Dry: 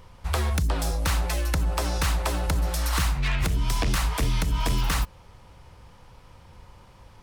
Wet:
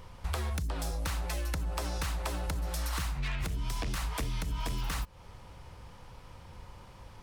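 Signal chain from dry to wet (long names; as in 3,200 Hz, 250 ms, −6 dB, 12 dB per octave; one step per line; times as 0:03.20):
downward compressor 4 to 1, threshold −32 dBFS, peak gain reduction 11 dB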